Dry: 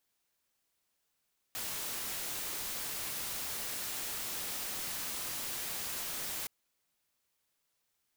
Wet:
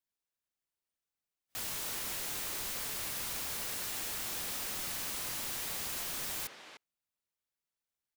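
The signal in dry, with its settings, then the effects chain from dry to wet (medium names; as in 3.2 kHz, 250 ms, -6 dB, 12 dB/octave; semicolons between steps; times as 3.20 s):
noise white, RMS -38.5 dBFS 4.92 s
spectral noise reduction 14 dB; bass shelf 170 Hz +4.5 dB; speakerphone echo 300 ms, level -6 dB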